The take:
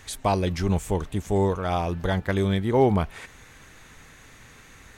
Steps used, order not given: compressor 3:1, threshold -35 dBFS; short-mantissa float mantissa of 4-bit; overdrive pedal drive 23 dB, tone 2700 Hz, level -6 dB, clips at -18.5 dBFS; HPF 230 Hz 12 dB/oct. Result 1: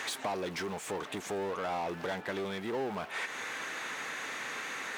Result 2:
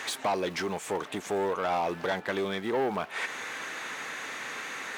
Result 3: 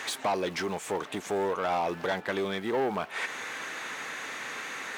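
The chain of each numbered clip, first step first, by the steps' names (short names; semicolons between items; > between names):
short-mantissa float > overdrive pedal > compressor > HPF; compressor > short-mantissa float > overdrive pedal > HPF; short-mantissa float > compressor > overdrive pedal > HPF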